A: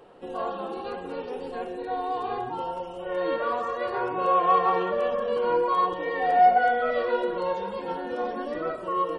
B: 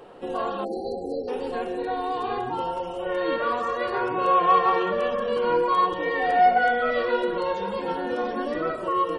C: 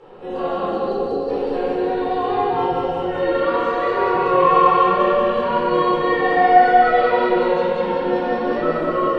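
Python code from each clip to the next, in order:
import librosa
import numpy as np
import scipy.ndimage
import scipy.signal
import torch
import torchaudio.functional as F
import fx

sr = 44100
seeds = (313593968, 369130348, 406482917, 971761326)

y1 = fx.dynamic_eq(x, sr, hz=670.0, q=0.95, threshold_db=-33.0, ratio=4.0, max_db=-6)
y1 = fx.spec_erase(y1, sr, start_s=0.64, length_s=0.64, low_hz=800.0, high_hz=4000.0)
y1 = fx.hum_notches(y1, sr, base_hz=60, count=3)
y1 = y1 * librosa.db_to_amplitude(5.5)
y2 = fx.air_absorb(y1, sr, metres=82.0)
y2 = fx.echo_feedback(y2, sr, ms=192, feedback_pct=57, wet_db=-3.0)
y2 = fx.room_shoebox(y2, sr, seeds[0], volume_m3=590.0, walls='mixed', distance_m=4.2)
y2 = y2 * librosa.db_to_amplitude(-5.0)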